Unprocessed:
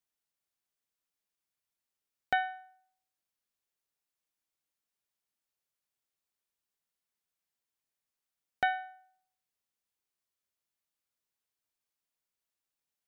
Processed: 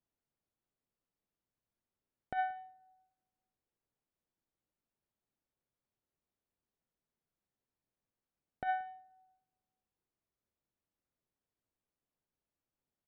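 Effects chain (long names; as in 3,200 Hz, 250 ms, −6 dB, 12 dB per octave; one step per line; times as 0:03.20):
low-pass filter 2,000 Hz 6 dB per octave
tilt shelving filter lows +7 dB, about 750 Hz
compressor whose output falls as the input rises −32 dBFS, ratio −0.5
single-tap delay 179 ms −23.5 dB
on a send at −21 dB: convolution reverb RT60 1.4 s, pre-delay 6 ms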